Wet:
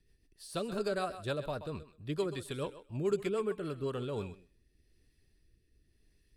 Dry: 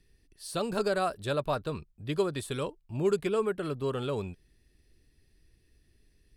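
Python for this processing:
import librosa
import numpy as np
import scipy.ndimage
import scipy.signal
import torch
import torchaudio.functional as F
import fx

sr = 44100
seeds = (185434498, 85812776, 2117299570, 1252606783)

y = fx.echo_thinned(x, sr, ms=129, feedback_pct=18, hz=380.0, wet_db=-12)
y = fx.rotary_switch(y, sr, hz=6.7, then_hz=0.9, switch_at_s=3.49)
y = y * 10.0 ** (-3.0 / 20.0)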